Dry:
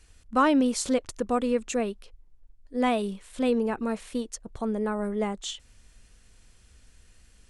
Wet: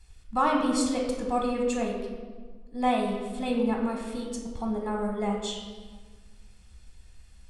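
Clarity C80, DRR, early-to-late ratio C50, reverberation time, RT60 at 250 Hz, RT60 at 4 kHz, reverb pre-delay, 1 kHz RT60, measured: 5.5 dB, -0.5 dB, 3.0 dB, 1.6 s, 1.9 s, 1.1 s, 3 ms, 1.5 s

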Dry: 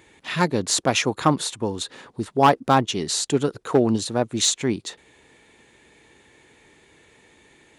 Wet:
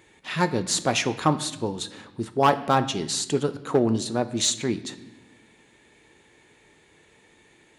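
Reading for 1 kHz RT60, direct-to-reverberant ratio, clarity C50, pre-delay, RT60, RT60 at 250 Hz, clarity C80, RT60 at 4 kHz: 0.75 s, 9.5 dB, 14.5 dB, 5 ms, 0.85 s, 1.6 s, 17.0 dB, 0.80 s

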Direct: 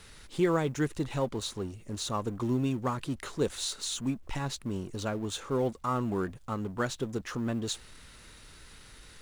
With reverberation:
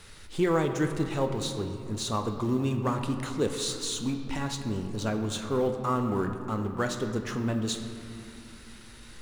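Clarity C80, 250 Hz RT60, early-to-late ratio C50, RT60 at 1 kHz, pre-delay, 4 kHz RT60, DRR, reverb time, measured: 8.0 dB, 3.7 s, 7.0 dB, 2.8 s, 3 ms, 1.5 s, 5.0 dB, 2.9 s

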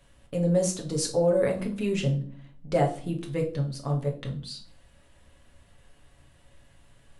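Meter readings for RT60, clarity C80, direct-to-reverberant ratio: 0.50 s, 15.5 dB, 0.0 dB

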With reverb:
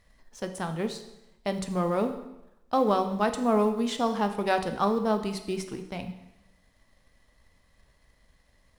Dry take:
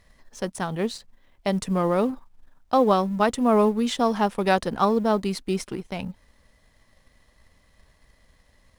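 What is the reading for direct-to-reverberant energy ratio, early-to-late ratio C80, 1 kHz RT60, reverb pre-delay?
7.0 dB, 12.5 dB, 0.90 s, 6 ms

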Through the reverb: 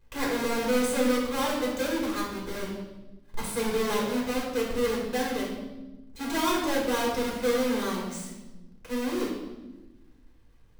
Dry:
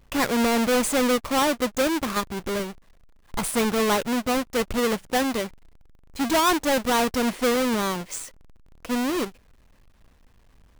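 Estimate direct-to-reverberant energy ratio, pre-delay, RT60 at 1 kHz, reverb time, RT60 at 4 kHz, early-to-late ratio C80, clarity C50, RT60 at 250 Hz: -3.5 dB, 4 ms, 0.95 s, 1.1 s, 0.90 s, 5.0 dB, 2.5 dB, 1.8 s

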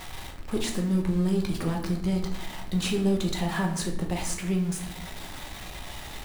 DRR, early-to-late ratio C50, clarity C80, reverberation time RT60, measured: 1.0 dB, 8.0 dB, 11.5 dB, 0.75 s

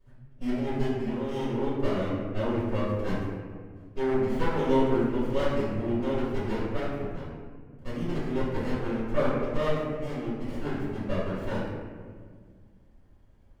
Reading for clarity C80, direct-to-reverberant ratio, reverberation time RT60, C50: 1.5 dB, -13.0 dB, 1.7 s, -1.0 dB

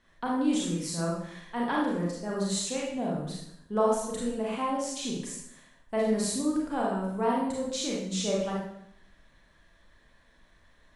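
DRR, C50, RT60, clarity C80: -4.5 dB, 0.5 dB, 0.75 s, 4.5 dB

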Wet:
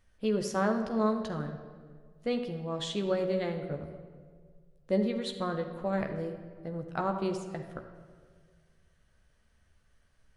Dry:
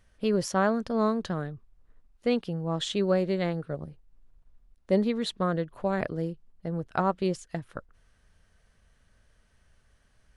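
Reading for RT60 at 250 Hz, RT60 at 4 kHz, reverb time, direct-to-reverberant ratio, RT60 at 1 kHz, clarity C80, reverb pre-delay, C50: 1.8 s, 1.1 s, 1.7 s, 4.0 dB, 1.5 s, 9.0 dB, 14 ms, 7.5 dB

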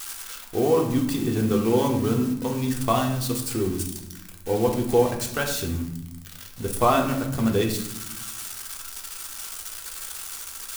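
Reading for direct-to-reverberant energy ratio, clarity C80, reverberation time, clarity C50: 1.0 dB, 10.0 dB, 0.90 s, 7.5 dB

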